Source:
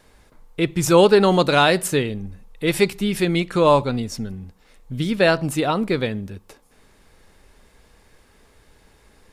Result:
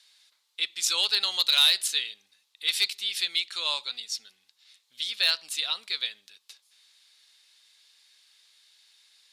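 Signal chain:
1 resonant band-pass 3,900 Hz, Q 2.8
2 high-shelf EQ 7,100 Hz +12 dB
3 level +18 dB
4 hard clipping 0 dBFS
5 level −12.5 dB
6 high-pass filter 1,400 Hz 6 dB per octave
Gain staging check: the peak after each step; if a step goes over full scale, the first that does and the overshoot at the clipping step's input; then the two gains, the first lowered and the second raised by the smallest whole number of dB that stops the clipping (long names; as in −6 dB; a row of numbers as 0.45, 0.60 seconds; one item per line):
−13.0, −11.0, +7.0, 0.0, −12.5, −10.0 dBFS
step 3, 7.0 dB
step 3 +11 dB, step 5 −5.5 dB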